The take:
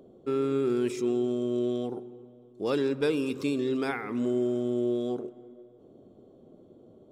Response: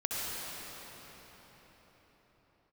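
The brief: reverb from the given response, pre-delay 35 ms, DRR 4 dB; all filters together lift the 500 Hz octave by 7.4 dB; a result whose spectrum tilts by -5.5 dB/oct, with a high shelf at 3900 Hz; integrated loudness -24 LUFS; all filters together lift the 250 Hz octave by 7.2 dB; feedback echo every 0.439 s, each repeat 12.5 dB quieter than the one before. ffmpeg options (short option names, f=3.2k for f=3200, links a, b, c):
-filter_complex "[0:a]equalizer=f=250:t=o:g=6,equalizer=f=500:t=o:g=7.5,highshelf=f=3.9k:g=5.5,aecho=1:1:439|878|1317:0.237|0.0569|0.0137,asplit=2[a][b];[1:a]atrim=start_sample=2205,adelay=35[c];[b][c]afir=irnorm=-1:irlink=0,volume=-11dB[d];[a][d]amix=inputs=2:normalize=0,volume=-3dB"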